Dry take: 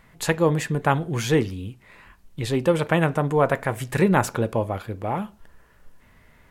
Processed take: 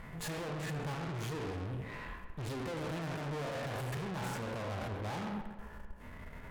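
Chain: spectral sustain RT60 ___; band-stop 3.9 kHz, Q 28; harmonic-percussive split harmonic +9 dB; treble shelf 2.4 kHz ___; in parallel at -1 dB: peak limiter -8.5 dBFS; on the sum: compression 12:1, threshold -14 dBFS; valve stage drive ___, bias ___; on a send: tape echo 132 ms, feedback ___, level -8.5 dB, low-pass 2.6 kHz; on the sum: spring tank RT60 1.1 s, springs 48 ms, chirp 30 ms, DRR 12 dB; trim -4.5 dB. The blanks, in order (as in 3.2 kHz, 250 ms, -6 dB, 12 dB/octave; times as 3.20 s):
0.54 s, -9 dB, 34 dB, 0.3, 66%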